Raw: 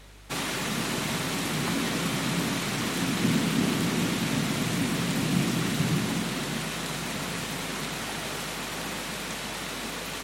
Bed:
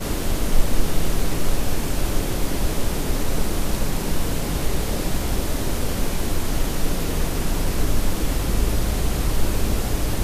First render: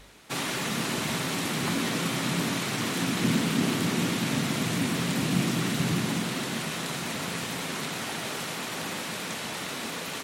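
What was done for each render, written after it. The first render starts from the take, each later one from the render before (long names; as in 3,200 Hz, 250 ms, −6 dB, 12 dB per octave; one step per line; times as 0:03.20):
hum removal 50 Hz, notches 4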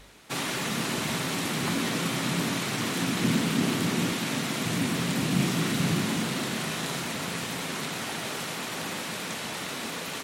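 0:04.12–0:04.66: low-shelf EQ 150 Hz −10 dB
0:05.36–0:07.05: double-tracking delay 37 ms −6.5 dB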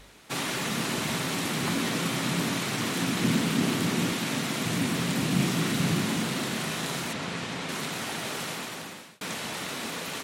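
0:07.13–0:07.69: high-frequency loss of the air 67 metres
0:08.50–0:09.21: fade out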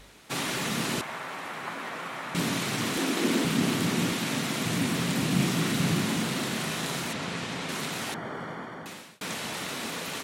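0:01.01–0:02.35: three-way crossover with the lows and the highs turned down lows −18 dB, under 550 Hz, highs −16 dB, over 2,100 Hz
0:02.97–0:03.45: high-pass with resonance 330 Hz, resonance Q 1.8
0:08.14–0:08.86: Savitzky-Golay smoothing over 41 samples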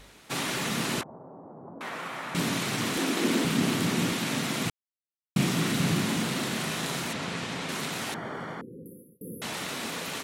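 0:01.03–0:01.81: Bessel low-pass filter 500 Hz, order 6
0:04.70–0:05.36: silence
0:08.61–0:09.42: linear-phase brick-wall band-stop 540–10,000 Hz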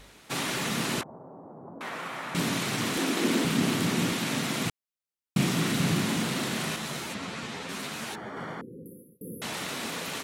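0:06.76–0:08.37: string-ensemble chorus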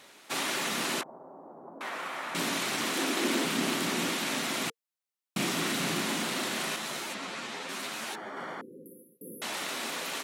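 high-pass filter 310 Hz 12 dB per octave
notch filter 460 Hz, Q 12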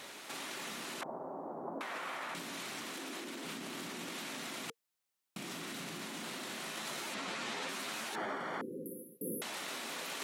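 brickwall limiter −26 dBFS, peak gain reduction 9.5 dB
compressor whose output falls as the input rises −42 dBFS, ratio −1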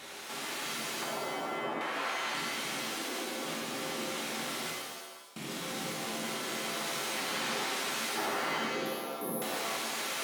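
reverb with rising layers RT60 1.1 s, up +7 semitones, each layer −2 dB, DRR −2 dB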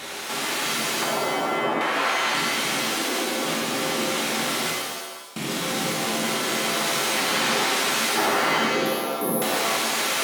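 level +11.5 dB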